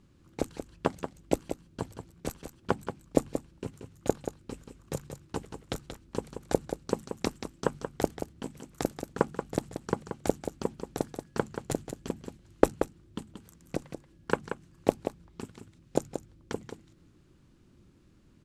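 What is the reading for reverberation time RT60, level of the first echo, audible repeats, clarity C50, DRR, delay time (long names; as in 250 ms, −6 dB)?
no reverb audible, −8.5 dB, 1, no reverb audible, no reverb audible, 181 ms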